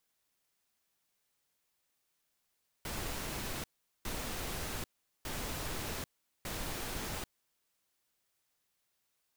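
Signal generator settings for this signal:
noise bursts pink, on 0.79 s, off 0.41 s, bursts 4, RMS −39 dBFS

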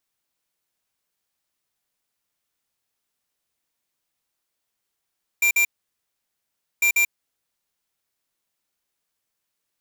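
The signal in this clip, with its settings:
beeps in groups square 2,370 Hz, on 0.09 s, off 0.05 s, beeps 2, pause 1.17 s, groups 2, −18 dBFS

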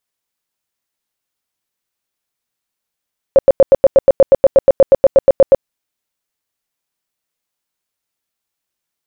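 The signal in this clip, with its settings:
tone bursts 543 Hz, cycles 15, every 0.12 s, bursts 19, −2 dBFS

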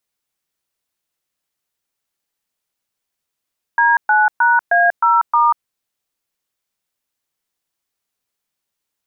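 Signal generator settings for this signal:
touch tones "D9#A0*", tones 190 ms, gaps 121 ms, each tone −12.5 dBFS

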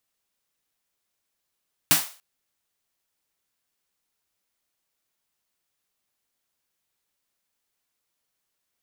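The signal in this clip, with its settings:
synth snare length 0.29 s, tones 160 Hz, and 290 Hz, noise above 590 Hz, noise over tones 11 dB, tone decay 0.20 s, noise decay 0.38 s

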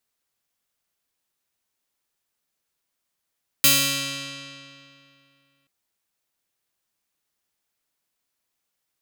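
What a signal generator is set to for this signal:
Karplus-Strong string C#3, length 2.03 s, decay 2.57 s, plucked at 0.33, bright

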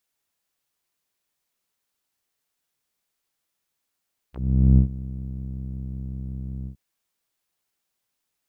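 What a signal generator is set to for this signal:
subtractive voice saw C2 12 dB per octave, low-pass 180 Hz, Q 1.9, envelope 5.5 octaves, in 0.06 s, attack 445 ms, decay 0.10 s, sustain −19 dB, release 0.10 s, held 2.33 s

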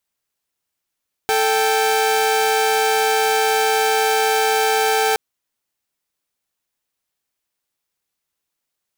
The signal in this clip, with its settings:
held notes A4/G5 saw, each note −15.5 dBFS 3.87 s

